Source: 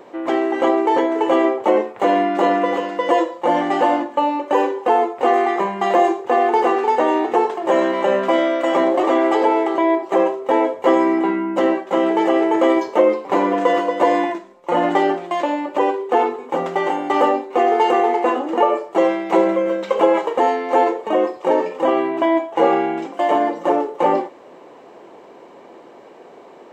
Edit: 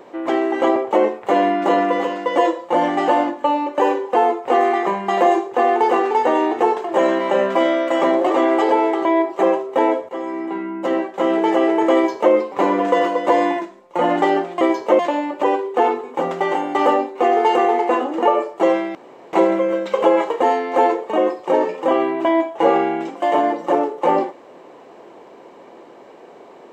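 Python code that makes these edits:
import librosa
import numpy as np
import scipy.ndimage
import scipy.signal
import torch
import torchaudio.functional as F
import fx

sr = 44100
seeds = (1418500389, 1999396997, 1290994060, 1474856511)

y = fx.edit(x, sr, fx.cut(start_s=0.76, length_s=0.73),
    fx.fade_in_from(start_s=10.82, length_s=1.3, floor_db=-15.5),
    fx.duplicate(start_s=12.68, length_s=0.38, to_s=15.34),
    fx.insert_room_tone(at_s=19.3, length_s=0.38), tone=tone)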